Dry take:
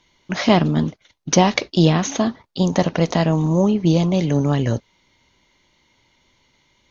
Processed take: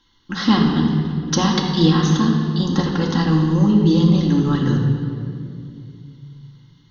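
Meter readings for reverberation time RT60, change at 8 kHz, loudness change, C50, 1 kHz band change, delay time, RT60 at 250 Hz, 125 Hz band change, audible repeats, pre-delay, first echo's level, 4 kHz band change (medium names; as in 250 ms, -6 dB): 2.5 s, no reading, +1.0 dB, 3.0 dB, -2.0 dB, no echo, 3.1 s, +2.5 dB, no echo, 4 ms, no echo, +2.0 dB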